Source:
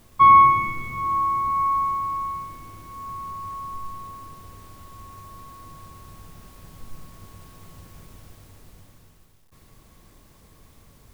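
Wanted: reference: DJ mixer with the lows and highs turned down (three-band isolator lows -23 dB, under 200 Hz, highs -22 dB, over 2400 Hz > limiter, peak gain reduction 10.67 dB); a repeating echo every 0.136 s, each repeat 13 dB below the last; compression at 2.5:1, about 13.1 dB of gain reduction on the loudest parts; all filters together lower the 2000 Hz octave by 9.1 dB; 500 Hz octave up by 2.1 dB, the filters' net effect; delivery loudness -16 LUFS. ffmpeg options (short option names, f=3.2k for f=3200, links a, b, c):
-filter_complex "[0:a]equalizer=f=500:t=o:g=4,equalizer=f=2k:t=o:g=-5.5,acompressor=threshold=-31dB:ratio=2.5,acrossover=split=200 2400:gain=0.0708 1 0.0794[a][b][c];[a][b][c]amix=inputs=3:normalize=0,aecho=1:1:136|272|408:0.224|0.0493|0.0108,volume=21dB,alimiter=limit=-9.5dB:level=0:latency=1"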